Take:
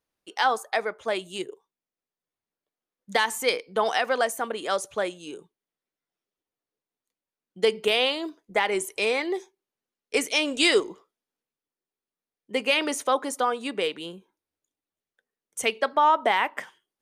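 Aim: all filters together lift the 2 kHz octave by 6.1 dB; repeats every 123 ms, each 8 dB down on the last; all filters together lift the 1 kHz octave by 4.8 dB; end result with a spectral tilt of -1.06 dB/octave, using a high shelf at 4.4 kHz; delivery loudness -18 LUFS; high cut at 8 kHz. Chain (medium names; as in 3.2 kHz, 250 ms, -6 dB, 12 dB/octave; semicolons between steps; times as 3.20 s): low-pass 8 kHz; peaking EQ 1 kHz +4.5 dB; peaking EQ 2 kHz +5.5 dB; treble shelf 4.4 kHz +4 dB; feedback delay 123 ms, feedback 40%, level -8 dB; trim +2.5 dB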